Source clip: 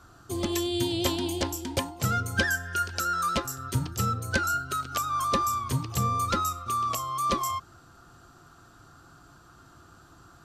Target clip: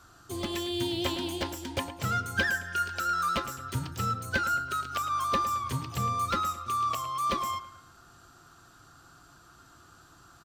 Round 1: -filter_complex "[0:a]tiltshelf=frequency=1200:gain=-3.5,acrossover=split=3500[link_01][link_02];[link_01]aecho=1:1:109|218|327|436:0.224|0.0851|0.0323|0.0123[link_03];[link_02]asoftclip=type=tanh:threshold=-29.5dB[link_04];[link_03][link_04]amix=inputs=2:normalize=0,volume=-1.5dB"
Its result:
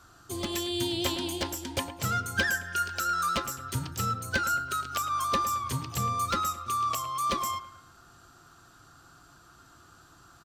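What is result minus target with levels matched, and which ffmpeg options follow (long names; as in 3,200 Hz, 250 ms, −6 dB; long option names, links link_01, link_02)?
soft clipping: distortion −7 dB
-filter_complex "[0:a]tiltshelf=frequency=1200:gain=-3.5,acrossover=split=3500[link_01][link_02];[link_01]aecho=1:1:109|218|327|436:0.224|0.0851|0.0323|0.0123[link_03];[link_02]asoftclip=type=tanh:threshold=-40.5dB[link_04];[link_03][link_04]amix=inputs=2:normalize=0,volume=-1.5dB"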